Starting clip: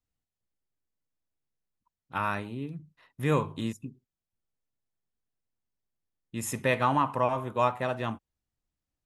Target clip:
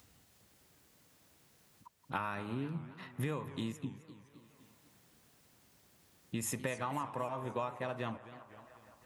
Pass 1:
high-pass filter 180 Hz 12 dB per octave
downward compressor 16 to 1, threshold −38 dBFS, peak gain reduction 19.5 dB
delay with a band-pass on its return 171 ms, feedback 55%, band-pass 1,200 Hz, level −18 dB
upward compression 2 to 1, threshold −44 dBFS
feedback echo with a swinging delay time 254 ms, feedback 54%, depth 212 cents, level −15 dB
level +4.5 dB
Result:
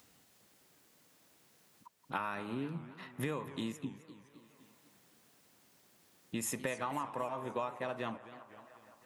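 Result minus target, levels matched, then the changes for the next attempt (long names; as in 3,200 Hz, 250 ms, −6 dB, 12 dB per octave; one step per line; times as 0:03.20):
125 Hz band −4.5 dB
change: high-pass filter 80 Hz 12 dB per octave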